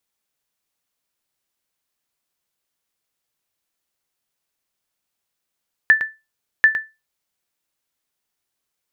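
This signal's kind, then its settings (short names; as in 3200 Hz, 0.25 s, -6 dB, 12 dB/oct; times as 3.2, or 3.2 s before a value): sonar ping 1760 Hz, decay 0.24 s, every 0.74 s, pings 2, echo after 0.11 s, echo -10 dB -4 dBFS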